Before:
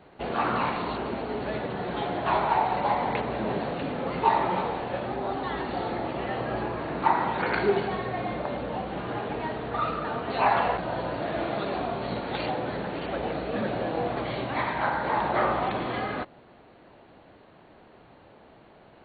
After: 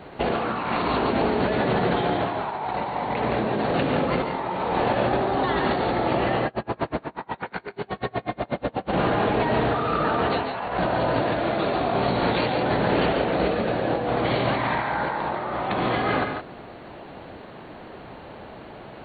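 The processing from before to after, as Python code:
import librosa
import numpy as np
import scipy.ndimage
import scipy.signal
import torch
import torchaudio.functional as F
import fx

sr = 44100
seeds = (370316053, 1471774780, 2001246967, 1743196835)

y = fx.over_compress(x, sr, threshold_db=-33.0, ratio=-1.0)
y = fx.echo_multitap(y, sr, ms=(142, 169), db=(-7.0, -10.5))
y = fx.tremolo_db(y, sr, hz=8.2, depth_db=34, at=(6.46, 8.92), fade=0.02)
y = y * librosa.db_to_amplitude(7.5)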